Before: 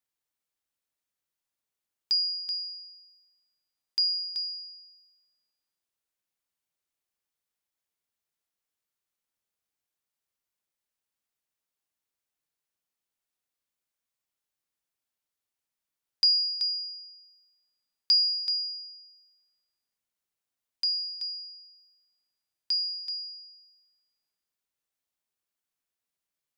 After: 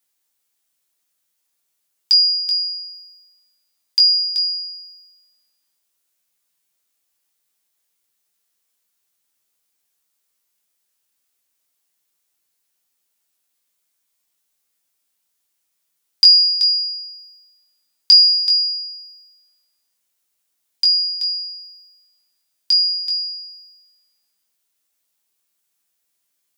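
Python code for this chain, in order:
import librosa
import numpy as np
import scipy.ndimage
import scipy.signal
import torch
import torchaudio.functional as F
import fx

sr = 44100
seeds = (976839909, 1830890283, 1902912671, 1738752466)

y = scipy.signal.sosfilt(scipy.signal.butter(2, 130.0, 'highpass', fs=sr, output='sos'), x)
y = fx.high_shelf(y, sr, hz=3700.0, db=9.0)
y = fx.room_early_taps(y, sr, ms=(11, 21), db=(-6.5, -5.5))
y = y * 10.0 ** (6.5 / 20.0)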